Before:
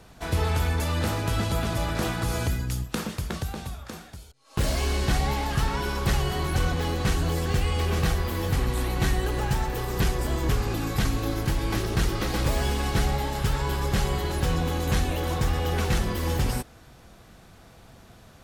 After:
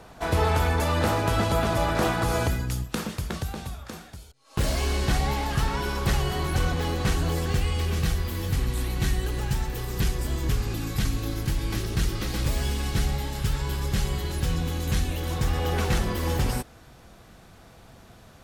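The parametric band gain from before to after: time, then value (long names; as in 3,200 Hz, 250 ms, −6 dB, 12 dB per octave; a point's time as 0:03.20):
parametric band 760 Hz 2.5 octaves
0:02.40 +7 dB
0:02.92 0 dB
0:07.37 0 dB
0:07.98 −7.5 dB
0:15.20 −7.5 dB
0:15.65 +1 dB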